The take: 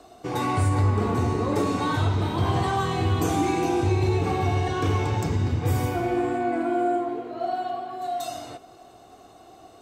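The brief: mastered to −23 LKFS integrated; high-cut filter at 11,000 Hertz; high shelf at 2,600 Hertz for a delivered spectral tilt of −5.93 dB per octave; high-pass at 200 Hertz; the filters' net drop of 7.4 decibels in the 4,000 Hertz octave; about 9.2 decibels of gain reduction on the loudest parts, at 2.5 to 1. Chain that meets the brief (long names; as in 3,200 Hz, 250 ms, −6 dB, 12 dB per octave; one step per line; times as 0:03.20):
high-pass filter 200 Hz
low-pass filter 11,000 Hz
high-shelf EQ 2,600 Hz −6.5 dB
parametric band 4,000 Hz −4 dB
downward compressor 2.5 to 1, threshold −35 dBFS
level +12.5 dB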